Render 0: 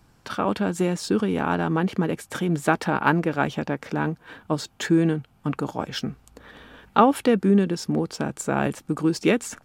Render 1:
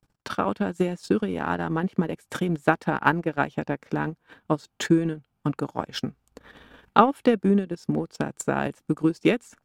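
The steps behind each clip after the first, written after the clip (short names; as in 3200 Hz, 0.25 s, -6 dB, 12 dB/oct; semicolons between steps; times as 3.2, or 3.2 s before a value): gate -55 dBFS, range -19 dB; transient shaper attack +6 dB, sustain -12 dB; gain -4 dB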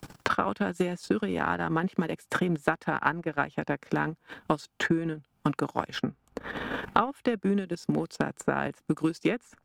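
dynamic EQ 1500 Hz, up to +5 dB, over -38 dBFS, Q 0.81; three-band squash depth 100%; gain -5.5 dB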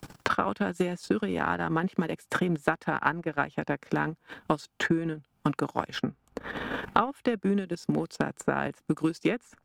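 nothing audible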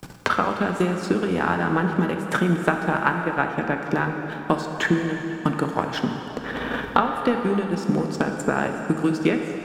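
plate-style reverb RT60 3.7 s, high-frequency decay 0.8×, DRR 3.5 dB; gain +4.5 dB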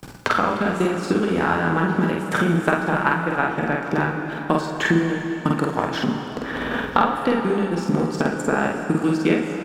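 doubler 48 ms -2.5 dB; echo 0.986 s -20.5 dB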